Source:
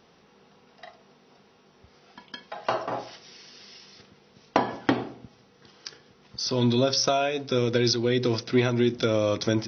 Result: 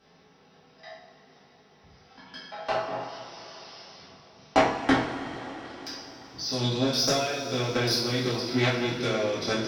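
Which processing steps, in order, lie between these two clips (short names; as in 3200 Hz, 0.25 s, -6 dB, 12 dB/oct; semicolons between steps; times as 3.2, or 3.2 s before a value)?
spectral trails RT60 0.61 s; in parallel at -1 dB: compressor, threshold -40 dBFS, peak gain reduction 23 dB; on the sum: added harmonics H 3 -12 dB, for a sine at -5 dBFS; two-slope reverb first 0.34 s, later 4.7 s, from -18 dB, DRR -7.5 dB; gain -3 dB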